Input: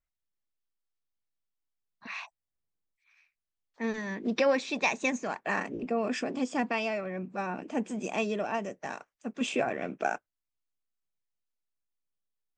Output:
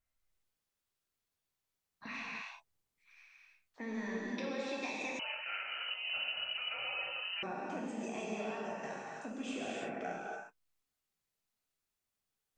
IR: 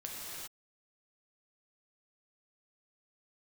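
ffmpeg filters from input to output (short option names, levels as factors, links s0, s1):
-filter_complex "[0:a]acompressor=threshold=0.00501:ratio=4[s0];[1:a]atrim=start_sample=2205,asetrate=52920,aresample=44100[s1];[s0][s1]afir=irnorm=-1:irlink=0,asettb=1/sr,asplit=3[s2][s3][s4];[s2]atrim=end=5.194[s5];[s3]atrim=start=5.19:end=7.43,asetpts=PTS-STARTPTS,afade=t=in:d=0.004:c=qsin,afade=t=out:st=2.236:d=0.004:c=qsin,lowpass=f=2700:t=q:w=0.5098,lowpass=f=2700:t=q:w=0.6013,lowpass=f=2700:t=q:w=0.9,lowpass=f=2700:t=q:w=2.563,afreqshift=-3200[s6];[s4]atrim=start=7.426[s7];[s5][s6]acrossfade=d=0.004:c1=hsin:c2=qsin[s8];[s8][s7]acrossfade=d=0.004:c1=qsin:c2=hsin,volume=2.37"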